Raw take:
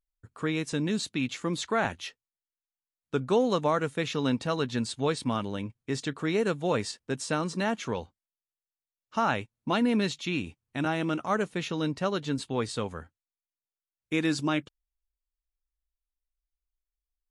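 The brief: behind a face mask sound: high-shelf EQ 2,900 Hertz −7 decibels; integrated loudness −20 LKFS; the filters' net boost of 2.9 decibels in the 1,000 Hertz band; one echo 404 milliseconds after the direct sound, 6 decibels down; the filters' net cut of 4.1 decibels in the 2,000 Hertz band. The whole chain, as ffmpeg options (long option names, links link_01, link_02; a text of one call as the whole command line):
ffmpeg -i in.wav -af "equalizer=frequency=1000:width_type=o:gain=6,equalizer=frequency=2000:width_type=o:gain=-5.5,highshelf=frequency=2900:gain=-7,aecho=1:1:404:0.501,volume=9dB" out.wav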